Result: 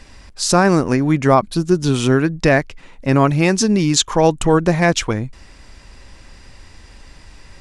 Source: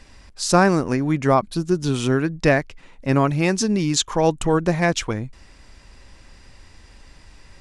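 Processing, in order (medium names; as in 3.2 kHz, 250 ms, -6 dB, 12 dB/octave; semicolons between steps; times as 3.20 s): loudness maximiser +6 dB; trim -1 dB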